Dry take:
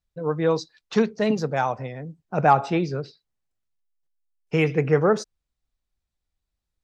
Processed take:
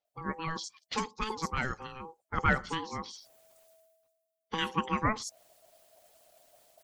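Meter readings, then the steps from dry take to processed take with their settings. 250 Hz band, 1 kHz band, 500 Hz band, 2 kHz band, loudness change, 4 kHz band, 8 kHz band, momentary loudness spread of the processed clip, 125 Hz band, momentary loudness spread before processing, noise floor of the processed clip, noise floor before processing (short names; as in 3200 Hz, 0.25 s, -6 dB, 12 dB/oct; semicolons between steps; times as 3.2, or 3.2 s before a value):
-12.0 dB, -8.5 dB, -18.5 dB, -2.5 dB, -10.5 dB, 0.0 dB, n/a, 14 LU, -12.0 dB, 14 LU, -85 dBFS, -84 dBFS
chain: ring modulator 650 Hz; in parallel at 0 dB: compressor, threshold -32 dBFS, peak gain reduction 17 dB; on the sum: harmonic-percussive split harmonic -11 dB; high shelf 4800 Hz +11.5 dB; bands offset in time lows, highs 50 ms, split 5400 Hz; reverse; upward compressor, threshold -34 dBFS; reverse; gain -5.5 dB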